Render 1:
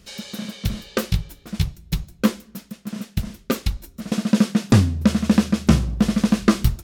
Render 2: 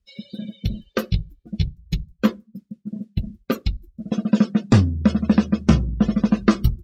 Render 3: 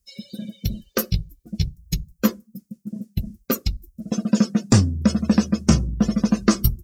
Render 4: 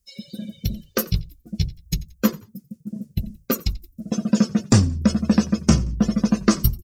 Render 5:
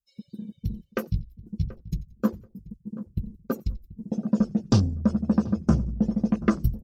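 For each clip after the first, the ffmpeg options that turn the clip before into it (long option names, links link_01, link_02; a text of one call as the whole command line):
ffmpeg -i in.wav -af "afftdn=noise_reduction=32:noise_floor=-32" out.wav
ffmpeg -i in.wav -af "aexciter=amount=3.7:drive=8.3:freq=5100,volume=-1dB" out.wav
ffmpeg -i in.wav -filter_complex "[0:a]asplit=3[link_01][link_02][link_03];[link_02]adelay=88,afreqshift=-55,volume=-21dB[link_04];[link_03]adelay=176,afreqshift=-110,volume=-30.9dB[link_05];[link_01][link_04][link_05]amix=inputs=3:normalize=0" out.wav
ffmpeg -i in.wav -filter_complex "[0:a]afwtdn=0.0316,asplit=2[link_01][link_02];[link_02]adelay=733,lowpass=frequency=1000:poles=1,volume=-16.5dB,asplit=2[link_03][link_04];[link_04]adelay=733,lowpass=frequency=1000:poles=1,volume=0.28,asplit=2[link_05][link_06];[link_06]adelay=733,lowpass=frequency=1000:poles=1,volume=0.28[link_07];[link_01][link_03][link_05][link_07]amix=inputs=4:normalize=0,volume=-4.5dB" out.wav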